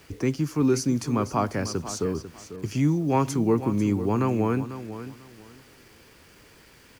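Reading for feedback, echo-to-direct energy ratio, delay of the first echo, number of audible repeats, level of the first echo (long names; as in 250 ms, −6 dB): 22%, −12.5 dB, 495 ms, 2, −12.5 dB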